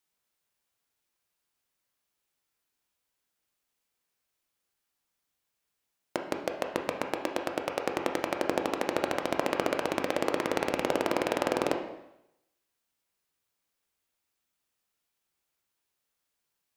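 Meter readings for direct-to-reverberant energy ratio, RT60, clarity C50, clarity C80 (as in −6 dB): 3.0 dB, 0.85 s, 7.0 dB, 9.5 dB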